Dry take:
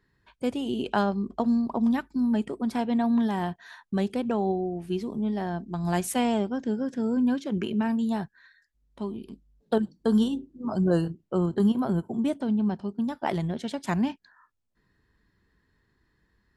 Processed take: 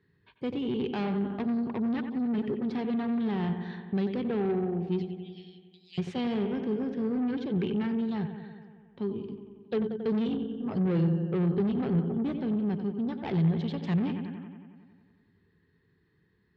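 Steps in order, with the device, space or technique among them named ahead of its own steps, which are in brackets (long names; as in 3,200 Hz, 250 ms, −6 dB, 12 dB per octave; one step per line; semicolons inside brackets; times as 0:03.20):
0:05.02–0:05.98: Butterworth high-pass 2,400 Hz 72 dB per octave
analogue delay pedal into a guitar amplifier (bucket-brigade delay 91 ms, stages 2,048, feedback 70%, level −11 dB; tube saturation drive 27 dB, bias 0.35; loudspeaker in its box 84–4,100 Hz, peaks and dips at 97 Hz +7 dB, 160 Hz +9 dB, 420 Hz +7 dB, 640 Hz −8 dB, 990 Hz −5 dB, 1,400 Hz −4 dB)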